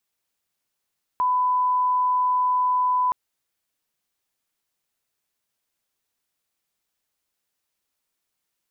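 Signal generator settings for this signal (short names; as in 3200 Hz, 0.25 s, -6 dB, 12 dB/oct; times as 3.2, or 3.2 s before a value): line-up tone -18 dBFS 1.92 s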